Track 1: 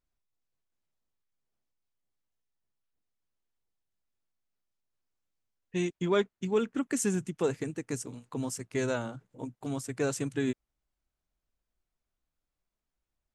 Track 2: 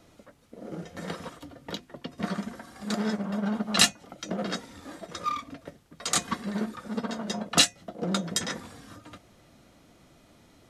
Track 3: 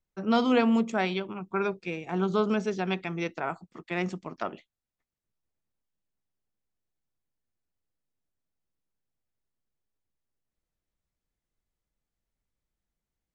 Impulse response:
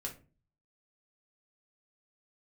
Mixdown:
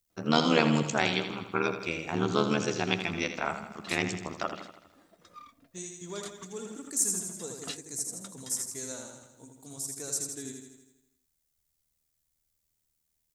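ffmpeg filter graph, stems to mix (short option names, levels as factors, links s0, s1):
-filter_complex "[0:a]aexciter=amount=7.4:drive=7.6:freq=4200,volume=0.2,asplit=2[s0][s1];[s1]volume=0.596[s2];[1:a]adelay=100,volume=0.106[s3];[2:a]tremolo=f=78:d=0.974,crystalizer=i=4.5:c=0,volume=1.26,asplit=2[s4][s5];[s5]volume=0.335[s6];[s2][s6]amix=inputs=2:normalize=0,aecho=0:1:81|162|243|324|405|486|567|648|729:1|0.57|0.325|0.185|0.106|0.0602|0.0343|0.0195|0.0111[s7];[s0][s3][s4][s7]amix=inputs=4:normalize=0"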